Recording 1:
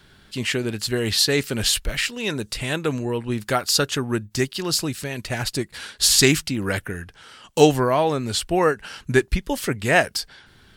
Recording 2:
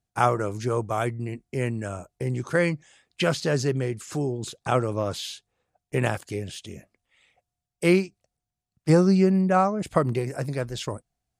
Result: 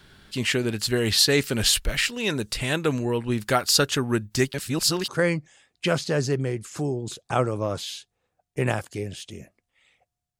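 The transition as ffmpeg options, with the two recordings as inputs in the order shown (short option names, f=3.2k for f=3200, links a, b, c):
-filter_complex "[0:a]apad=whole_dur=10.39,atrim=end=10.39,asplit=2[a][b];[a]atrim=end=4.542[c];[b]atrim=start=4.538:end=5.082,asetpts=PTS-STARTPTS,areverse[d];[1:a]atrim=start=2.438:end=7.75[e];[c][d]acrossfade=d=0.004:c1=hsin:c2=hsin[f];[f][e]acrossfade=d=0.004:c1=hsin:c2=hsin"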